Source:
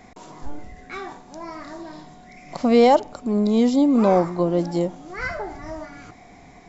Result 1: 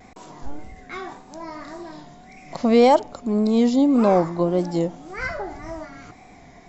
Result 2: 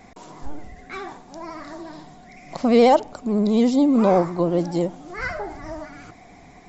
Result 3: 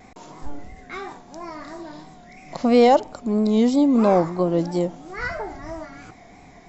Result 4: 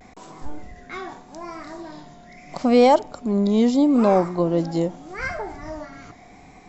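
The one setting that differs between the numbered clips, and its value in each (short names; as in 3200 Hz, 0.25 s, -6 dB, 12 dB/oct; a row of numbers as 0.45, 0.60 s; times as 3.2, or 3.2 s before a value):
vibrato, rate: 1.8, 14, 3, 0.8 Hz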